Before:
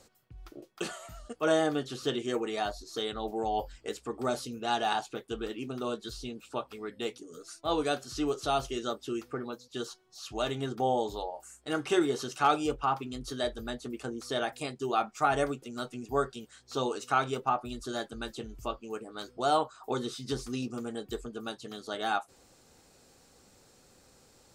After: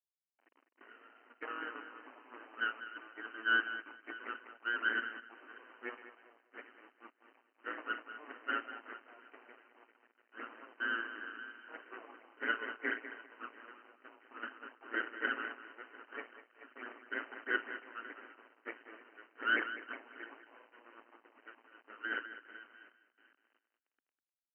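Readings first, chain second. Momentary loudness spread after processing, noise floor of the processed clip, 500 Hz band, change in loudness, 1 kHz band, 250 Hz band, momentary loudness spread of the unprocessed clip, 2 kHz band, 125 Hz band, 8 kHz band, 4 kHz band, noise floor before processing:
23 LU, under -85 dBFS, -19.0 dB, -6.5 dB, -13.0 dB, -16.5 dB, 12 LU, +4.5 dB, under -35 dB, under -35 dB, -10.5 dB, -62 dBFS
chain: backward echo that repeats 349 ms, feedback 41%, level -14 dB; in parallel at +1.5 dB: compression 4:1, threshold -44 dBFS, peak gain reduction 20 dB; on the sum: peak limiter -18.5 dBFS, peak gain reduction 6.5 dB; cascade formant filter a; ring modulator 57 Hz; full-wave rectifier; word length cut 10-bit, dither none; brick-wall FIR band-pass 240–3100 Hz; on a send: feedback delay 201 ms, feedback 33%, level -8.5 dB; on the sum: three bands expanded up and down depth 70%; trim +6.5 dB

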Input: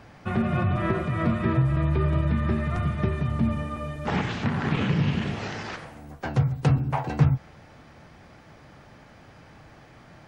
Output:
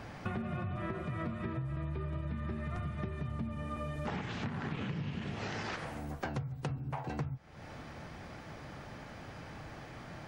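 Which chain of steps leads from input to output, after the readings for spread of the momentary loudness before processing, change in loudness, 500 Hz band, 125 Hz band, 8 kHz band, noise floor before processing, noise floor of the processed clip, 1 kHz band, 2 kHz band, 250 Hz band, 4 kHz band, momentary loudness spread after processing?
9 LU, -14.0 dB, -11.0 dB, -14.0 dB, no reading, -51 dBFS, -49 dBFS, -10.5 dB, -9.5 dB, -12.5 dB, -9.0 dB, 10 LU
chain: compression 12:1, threshold -37 dBFS, peak gain reduction 23.5 dB; trim +2.5 dB

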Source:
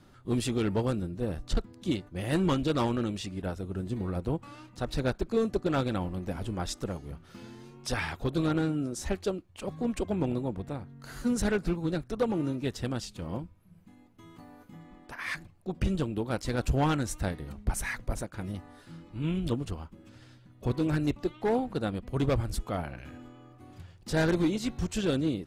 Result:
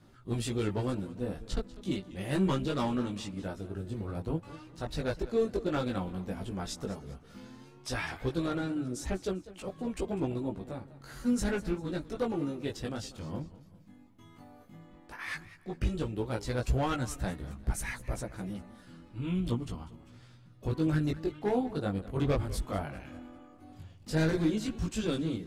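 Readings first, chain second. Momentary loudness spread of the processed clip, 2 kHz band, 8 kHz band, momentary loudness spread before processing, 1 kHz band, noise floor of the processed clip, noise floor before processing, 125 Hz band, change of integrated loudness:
17 LU, -3.0 dB, -3.0 dB, 17 LU, -3.0 dB, -56 dBFS, -56 dBFS, -2.5 dB, -2.5 dB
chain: chorus voices 2, 0.11 Hz, delay 18 ms, depth 2.6 ms; modulated delay 198 ms, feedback 41%, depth 131 cents, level -17 dB

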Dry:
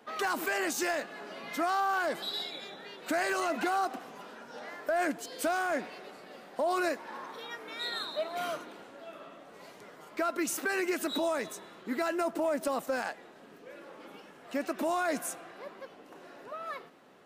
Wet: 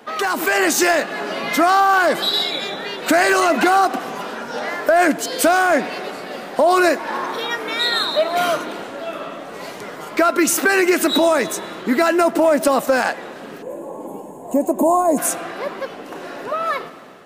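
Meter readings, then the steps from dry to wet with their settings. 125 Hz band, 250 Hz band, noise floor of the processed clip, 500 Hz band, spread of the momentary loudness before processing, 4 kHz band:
+16.5 dB, +16.0 dB, -35 dBFS, +15.5 dB, 19 LU, +16.5 dB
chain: time-frequency box 13.62–15.18 s, 1.1–6.4 kHz -23 dB; in parallel at -1 dB: compression, threshold -37 dBFS, peak gain reduction 10.5 dB; on the sum: spring tank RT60 2.4 s, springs 44 ms, chirp 50 ms, DRR 19 dB; level rider gain up to 5.5 dB; trim +7.5 dB

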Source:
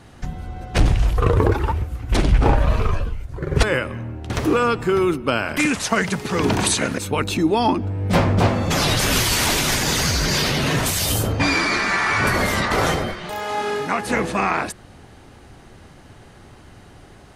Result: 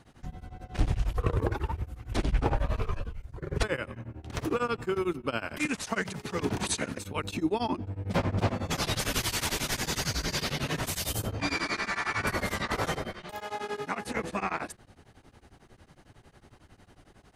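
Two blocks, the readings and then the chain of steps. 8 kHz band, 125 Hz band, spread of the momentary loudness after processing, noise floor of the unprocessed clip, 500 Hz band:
-11.5 dB, -11.5 dB, 9 LU, -45 dBFS, -11.5 dB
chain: tremolo of two beating tones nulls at 11 Hz; trim -8.5 dB

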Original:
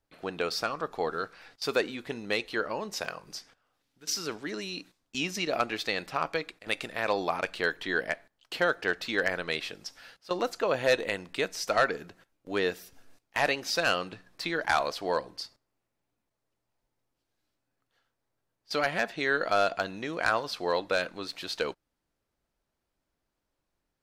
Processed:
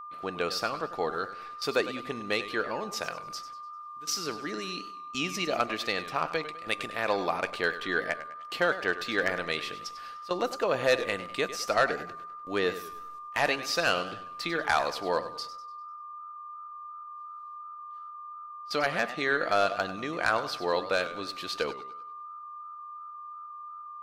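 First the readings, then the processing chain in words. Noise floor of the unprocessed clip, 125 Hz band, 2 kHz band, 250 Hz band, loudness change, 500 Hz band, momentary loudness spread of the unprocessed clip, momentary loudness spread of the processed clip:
-83 dBFS, 0.0 dB, +0.5 dB, +0.5 dB, 0.0 dB, 0.0 dB, 12 LU, 16 LU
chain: whistle 1.2 kHz -40 dBFS; modulated delay 99 ms, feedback 41%, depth 134 cents, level -13 dB

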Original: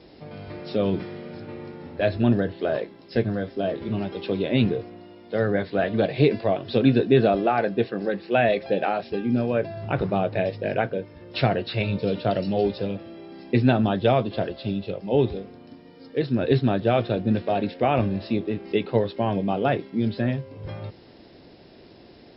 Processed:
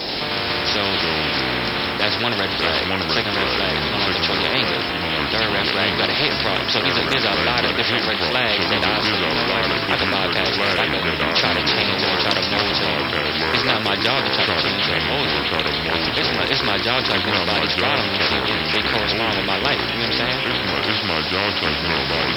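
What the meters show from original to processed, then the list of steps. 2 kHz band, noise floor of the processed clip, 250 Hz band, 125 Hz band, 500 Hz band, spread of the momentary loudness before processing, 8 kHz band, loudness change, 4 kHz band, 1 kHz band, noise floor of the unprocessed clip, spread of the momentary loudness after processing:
+15.0 dB, -24 dBFS, -1.0 dB, -2.0 dB, 0.0 dB, 15 LU, no reading, +6.0 dB, +21.0 dB, +7.5 dB, -49 dBFS, 2 LU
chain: tone controls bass -14 dB, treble +11 dB; ever faster or slower copies 82 ms, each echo -4 st, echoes 2; spectrum-flattening compressor 4:1; trim +6.5 dB

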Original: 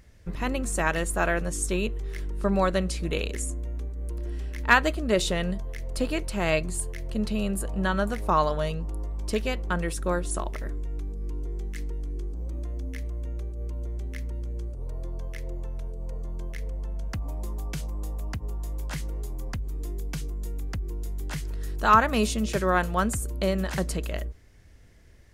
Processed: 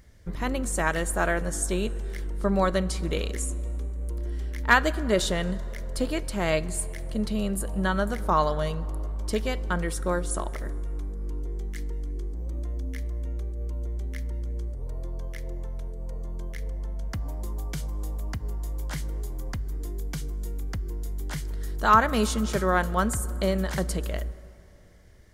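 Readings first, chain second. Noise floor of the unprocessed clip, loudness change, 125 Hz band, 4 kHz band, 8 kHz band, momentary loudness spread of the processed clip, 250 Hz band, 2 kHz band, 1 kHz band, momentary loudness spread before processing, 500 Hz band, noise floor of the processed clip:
-47 dBFS, 0.0 dB, +0.5 dB, 0.0 dB, +1.0 dB, 11 LU, 0.0 dB, -0.5 dB, 0.0 dB, 11 LU, 0.0 dB, -40 dBFS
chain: treble shelf 12 kHz +3 dB; band-stop 2.6 kHz, Q 8.5; plate-style reverb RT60 3.3 s, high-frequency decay 0.55×, DRR 17.5 dB

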